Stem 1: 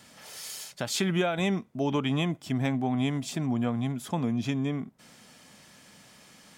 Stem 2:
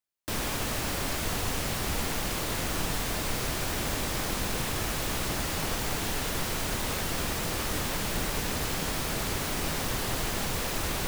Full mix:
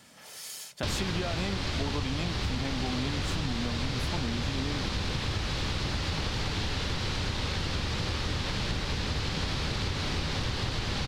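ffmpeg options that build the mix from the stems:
-filter_complex "[0:a]volume=-1.5dB,asplit=2[a][b];[b]volume=-19dB[c];[1:a]lowpass=f=4.3k:t=q:w=2,equalizer=f=85:w=0.8:g=10,bandreject=f=670:w=12,adelay=550,volume=1dB[d];[c]aecho=0:1:478:1[e];[a][d][e]amix=inputs=3:normalize=0,acompressor=threshold=-27dB:ratio=6"

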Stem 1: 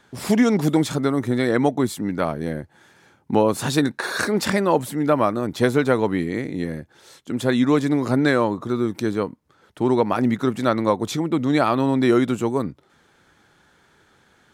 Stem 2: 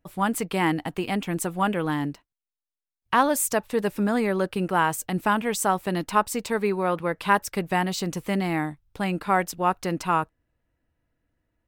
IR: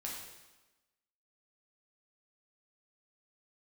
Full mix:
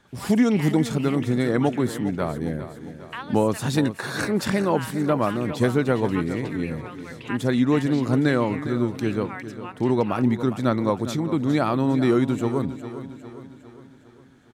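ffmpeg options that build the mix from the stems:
-filter_complex "[0:a]lowshelf=f=210:g=8.5,volume=-5dB,asplit=2[a][b];[b]volume=-12.5dB[c];[1:a]bandpass=f=2.5k:t=q:w=1.7:csg=0,volume=-5dB,asplit=2[d][e];[e]volume=-19dB[f];[c][f]amix=inputs=2:normalize=0,aecho=0:1:406|812|1218|1624|2030|2436|2842|3248:1|0.52|0.27|0.141|0.0731|0.038|0.0198|0.0103[g];[a][d][g]amix=inputs=3:normalize=0"

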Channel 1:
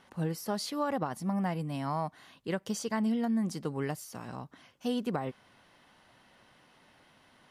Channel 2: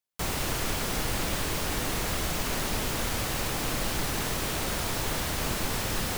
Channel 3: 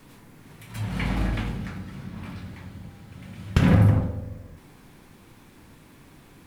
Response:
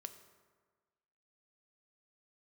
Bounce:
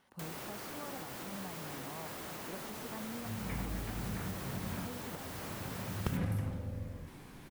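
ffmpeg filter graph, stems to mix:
-filter_complex "[0:a]volume=-9.5dB,asplit=2[a][b];[1:a]highpass=160,aeval=exprs='0.0376*(abs(mod(val(0)/0.0376+3,4)-2)-1)':c=same,volume=-4dB[c];[2:a]adelay=2500,volume=-1.5dB[d];[b]apad=whole_len=395522[e];[d][e]sidechaincompress=threshold=-47dB:ratio=8:attack=16:release=390[f];[a][c]amix=inputs=2:normalize=0,highshelf=f=12k:g=8.5,alimiter=level_in=6.5dB:limit=-24dB:level=0:latency=1:release=493,volume=-6.5dB,volume=0dB[g];[f][g]amix=inputs=2:normalize=0,acrossover=split=1900|5600[h][i][j];[h]acompressor=threshold=-35dB:ratio=4[k];[i]acompressor=threshold=-55dB:ratio=4[l];[j]acompressor=threshold=-49dB:ratio=4[m];[k][l][m]amix=inputs=3:normalize=0"

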